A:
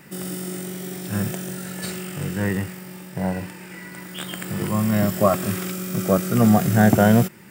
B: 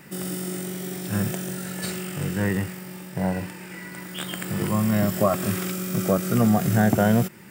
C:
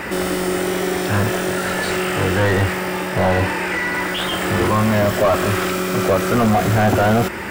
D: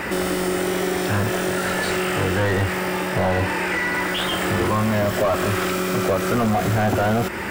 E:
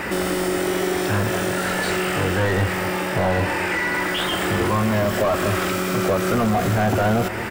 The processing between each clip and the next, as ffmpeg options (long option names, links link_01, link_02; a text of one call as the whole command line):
ffmpeg -i in.wav -af "acompressor=threshold=-18dB:ratio=2" out.wav
ffmpeg -i in.wav -filter_complex "[0:a]lowshelf=frequency=100:width_type=q:width=3:gain=13.5,asplit=2[link_01][link_02];[link_02]highpass=frequency=720:poles=1,volume=36dB,asoftclip=type=tanh:threshold=-6dB[link_03];[link_01][link_03]amix=inputs=2:normalize=0,lowpass=frequency=1100:poles=1,volume=-6dB" out.wav
ffmpeg -i in.wav -af "acompressor=threshold=-20dB:ratio=2" out.wav
ffmpeg -i in.wav -filter_complex "[0:a]asplit=2[link_01][link_02];[link_02]adelay=221.6,volume=-13dB,highshelf=frequency=4000:gain=-4.99[link_03];[link_01][link_03]amix=inputs=2:normalize=0" out.wav